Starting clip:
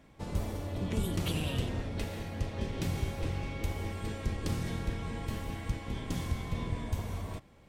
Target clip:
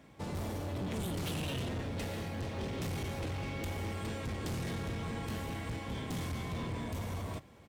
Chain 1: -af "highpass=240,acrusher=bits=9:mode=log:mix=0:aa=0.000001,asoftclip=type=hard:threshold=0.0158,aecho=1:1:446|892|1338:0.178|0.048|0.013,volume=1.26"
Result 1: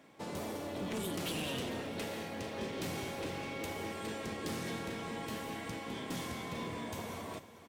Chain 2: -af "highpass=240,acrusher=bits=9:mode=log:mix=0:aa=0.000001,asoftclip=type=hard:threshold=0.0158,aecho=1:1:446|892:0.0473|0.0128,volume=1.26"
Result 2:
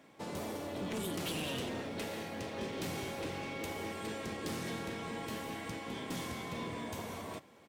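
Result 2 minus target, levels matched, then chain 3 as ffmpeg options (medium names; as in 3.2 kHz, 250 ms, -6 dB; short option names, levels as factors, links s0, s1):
125 Hz band -7.0 dB
-af "highpass=75,acrusher=bits=9:mode=log:mix=0:aa=0.000001,asoftclip=type=hard:threshold=0.0158,aecho=1:1:446|892:0.0473|0.0128,volume=1.26"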